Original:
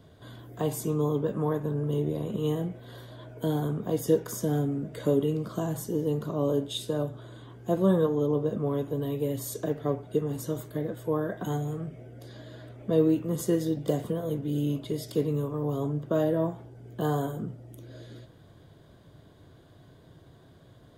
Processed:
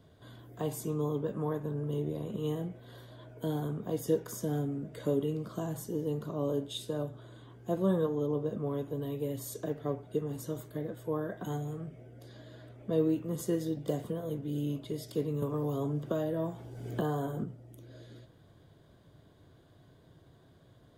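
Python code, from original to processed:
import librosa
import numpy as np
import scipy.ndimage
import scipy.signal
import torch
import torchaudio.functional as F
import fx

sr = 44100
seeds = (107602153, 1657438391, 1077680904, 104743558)

y = fx.band_squash(x, sr, depth_pct=100, at=(15.42, 17.44))
y = y * librosa.db_to_amplitude(-5.5)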